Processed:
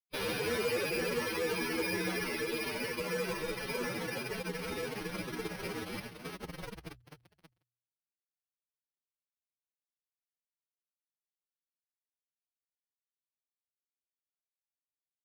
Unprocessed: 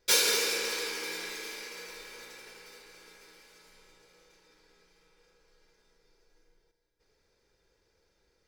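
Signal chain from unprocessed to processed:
running median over 3 samples
source passing by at 0:03.37, 12 m/s, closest 15 metres
reverb reduction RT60 1.8 s
fuzz pedal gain 50 dB, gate −59 dBFS
mains-hum notches 60/120 Hz
reversed playback
downward compressor 6 to 1, threshold −27 dBFS, peak gain reduction 12 dB
reversed playback
bad sample-rate conversion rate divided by 6×, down filtered, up hold
brickwall limiter −26.5 dBFS, peak gain reduction 6.5 dB
parametric band 160 Hz +14.5 dB 2.6 octaves
phase-vocoder stretch with locked phases 1.8×
level −3 dB

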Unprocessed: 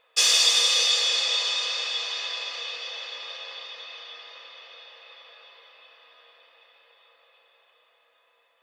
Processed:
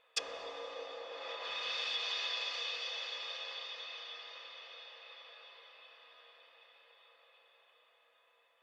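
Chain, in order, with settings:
0:01.48–0:02.03: mu-law and A-law mismatch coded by A
treble cut that deepens with the level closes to 780 Hz, closed at −19.5 dBFS
level −5 dB

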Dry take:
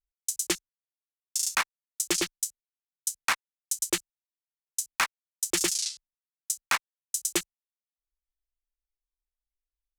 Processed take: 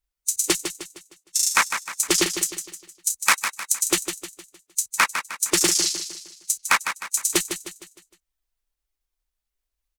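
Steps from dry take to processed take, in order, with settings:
spectral magnitudes quantised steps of 15 dB
0:03.10–0:03.72: high-shelf EQ 4,200 Hz +7.5 dB
in parallel at −2 dB: brickwall limiter −16.5 dBFS, peak gain reduction 9.5 dB
on the sum: repeating echo 154 ms, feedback 43%, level −8.5 dB
level +3 dB

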